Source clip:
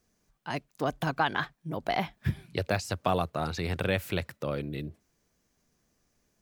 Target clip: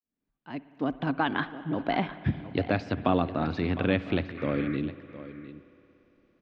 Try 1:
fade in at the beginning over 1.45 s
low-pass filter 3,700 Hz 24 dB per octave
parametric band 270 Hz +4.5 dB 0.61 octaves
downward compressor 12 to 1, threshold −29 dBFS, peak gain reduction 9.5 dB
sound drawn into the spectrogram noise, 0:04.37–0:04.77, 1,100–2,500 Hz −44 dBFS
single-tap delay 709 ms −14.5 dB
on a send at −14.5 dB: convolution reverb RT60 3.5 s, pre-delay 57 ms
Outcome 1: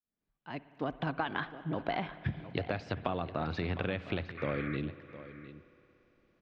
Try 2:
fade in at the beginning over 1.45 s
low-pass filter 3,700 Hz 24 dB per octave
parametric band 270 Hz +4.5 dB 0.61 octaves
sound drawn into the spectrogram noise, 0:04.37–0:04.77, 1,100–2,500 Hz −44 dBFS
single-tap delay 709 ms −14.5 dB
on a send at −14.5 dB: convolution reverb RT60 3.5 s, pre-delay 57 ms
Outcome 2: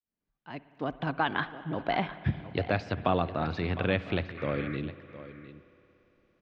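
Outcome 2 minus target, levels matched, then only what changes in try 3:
250 Hz band −3.5 dB
change: parametric band 270 Hz +13 dB 0.61 octaves

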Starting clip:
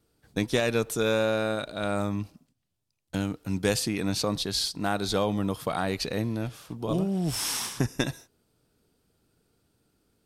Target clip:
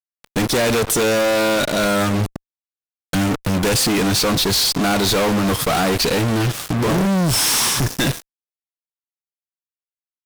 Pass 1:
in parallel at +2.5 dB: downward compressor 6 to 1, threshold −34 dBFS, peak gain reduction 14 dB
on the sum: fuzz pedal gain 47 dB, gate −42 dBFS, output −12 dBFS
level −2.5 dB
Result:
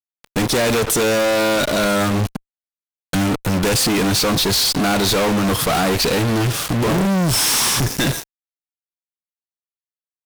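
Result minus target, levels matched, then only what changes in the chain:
downward compressor: peak gain reduction −9.5 dB
change: downward compressor 6 to 1, threshold −45.5 dBFS, peak gain reduction 23.5 dB

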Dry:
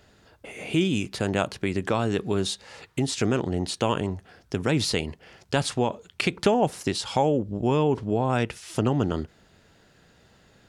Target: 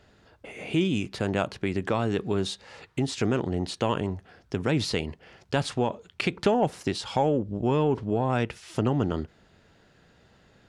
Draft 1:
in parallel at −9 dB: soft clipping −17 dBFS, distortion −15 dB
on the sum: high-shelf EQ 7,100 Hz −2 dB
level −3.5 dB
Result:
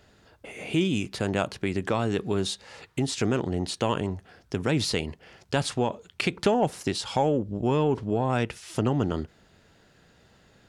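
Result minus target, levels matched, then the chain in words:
8,000 Hz band +4.5 dB
in parallel at −9 dB: soft clipping −17 dBFS, distortion −15 dB
on the sum: high-shelf EQ 7,100 Hz −11 dB
level −3.5 dB

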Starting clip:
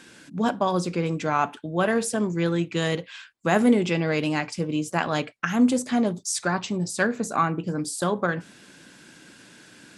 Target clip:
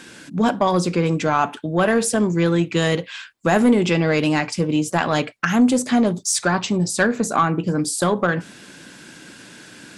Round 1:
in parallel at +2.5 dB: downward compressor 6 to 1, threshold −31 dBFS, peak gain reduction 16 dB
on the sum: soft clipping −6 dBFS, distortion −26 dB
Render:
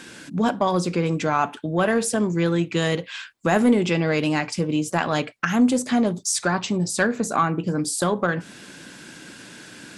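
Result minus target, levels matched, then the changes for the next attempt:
downward compressor: peak gain reduction +9 dB
change: downward compressor 6 to 1, threshold −20 dBFS, peak gain reduction 7 dB

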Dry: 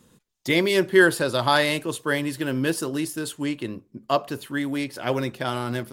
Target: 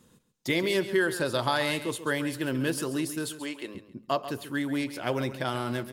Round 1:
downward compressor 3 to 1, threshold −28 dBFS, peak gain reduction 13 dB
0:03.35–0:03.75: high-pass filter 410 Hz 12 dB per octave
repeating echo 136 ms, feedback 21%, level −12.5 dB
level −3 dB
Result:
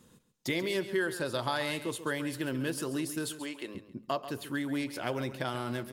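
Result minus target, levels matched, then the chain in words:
downward compressor: peak gain reduction +5.5 dB
downward compressor 3 to 1, threshold −20 dBFS, peak gain reduction 7.5 dB
0:03.35–0:03.75: high-pass filter 410 Hz 12 dB per octave
repeating echo 136 ms, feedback 21%, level −12.5 dB
level −3 dB

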